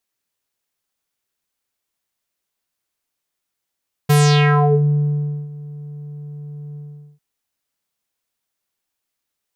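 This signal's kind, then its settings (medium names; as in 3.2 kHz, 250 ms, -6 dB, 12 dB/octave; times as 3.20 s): synth note square D3 12 dB/octave, low-pass 250 Hz, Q 3.7, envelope 6 oct, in 0.75 s, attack 13 ms, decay 1.38 s, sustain -23.5 dB, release 0.43 s, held 2.67 s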